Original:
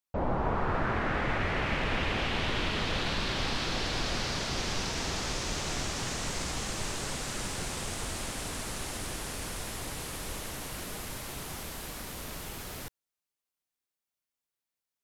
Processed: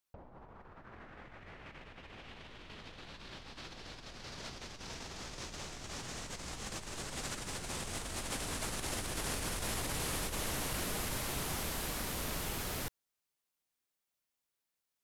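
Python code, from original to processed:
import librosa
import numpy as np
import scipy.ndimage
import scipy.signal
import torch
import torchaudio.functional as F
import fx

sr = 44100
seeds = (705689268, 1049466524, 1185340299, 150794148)

y = fx.over_compress(x, sr, threshold_db=-38.0, ratio=-0.5)
y = y * 10.0 ** (-3.0 / 20.0)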